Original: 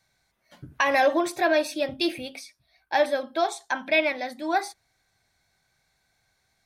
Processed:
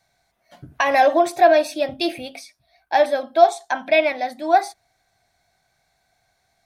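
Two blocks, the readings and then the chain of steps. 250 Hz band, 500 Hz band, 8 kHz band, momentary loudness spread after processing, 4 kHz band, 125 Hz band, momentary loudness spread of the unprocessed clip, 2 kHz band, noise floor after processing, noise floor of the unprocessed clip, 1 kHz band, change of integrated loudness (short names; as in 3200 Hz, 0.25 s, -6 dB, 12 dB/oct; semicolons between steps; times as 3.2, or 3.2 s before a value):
+2.0 dB, +7.5 dB, +2.0 dB, 11 LU, +2.0 dB, n/a, 11 LU, +2.0 dB, -69 dBFS, -72 dBFS, +8.5 dB, +6.5 dB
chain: bell 700 Hz +11.5 dB 0.3 oct; gain +2 dB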